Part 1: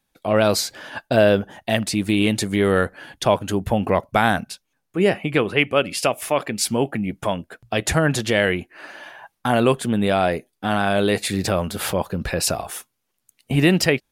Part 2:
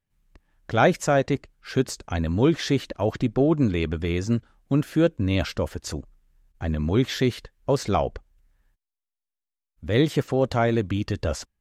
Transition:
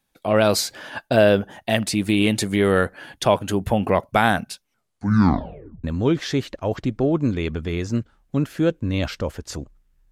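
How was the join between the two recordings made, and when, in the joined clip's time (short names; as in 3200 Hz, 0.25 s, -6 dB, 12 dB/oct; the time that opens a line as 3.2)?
part 1
4.59 tape stop 1.25 s
5.84 switch to part 2 from 2.21 s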